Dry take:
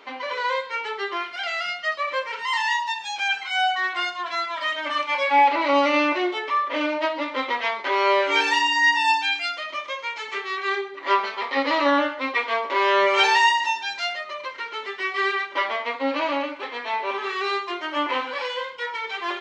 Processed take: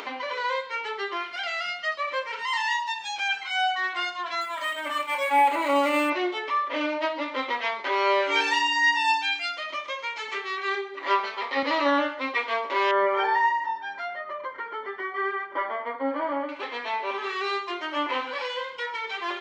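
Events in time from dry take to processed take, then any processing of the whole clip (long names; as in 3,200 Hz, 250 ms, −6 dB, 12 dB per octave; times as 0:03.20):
0:04.41–0:06.10: linearly interpolated sample-rate reduction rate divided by 4×
0:10.75–0:11.63: high-pass filter 210 Hz
0:12.91–0:16.49: Savitzky-Golay smoothing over 41 samples
whole clip: high-pass filter 45 Hz; upward compression, threshold −25 dBFS; level −3 dB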